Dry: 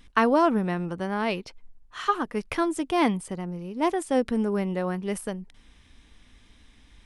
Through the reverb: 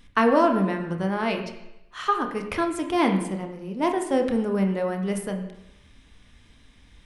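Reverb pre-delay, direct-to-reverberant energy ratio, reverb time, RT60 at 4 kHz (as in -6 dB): 25 ms, 4.0 dB, 0.85 s, 0.90 s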